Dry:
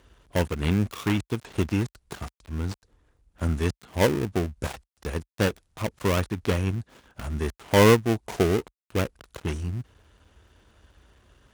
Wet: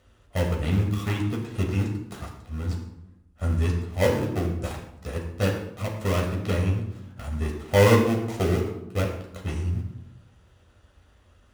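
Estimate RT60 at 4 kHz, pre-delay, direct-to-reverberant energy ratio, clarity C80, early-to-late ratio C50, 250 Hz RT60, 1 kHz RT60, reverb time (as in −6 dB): 0.55 s, 10 ms, −0.5 dB, 8.0 dB, 5.5 dB, 1.1 s, 0.85 s, 0.85 s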